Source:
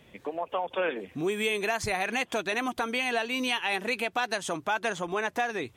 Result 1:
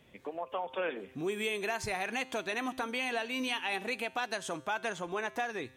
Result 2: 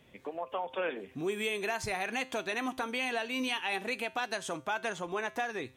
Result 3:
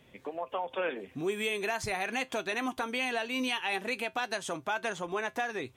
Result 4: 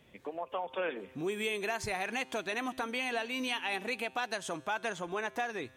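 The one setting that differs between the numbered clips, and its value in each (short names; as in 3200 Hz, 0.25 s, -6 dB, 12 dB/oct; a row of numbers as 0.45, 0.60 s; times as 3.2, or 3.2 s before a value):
resonator, decay: 0.86, 0.39, 0.16, 2.1 s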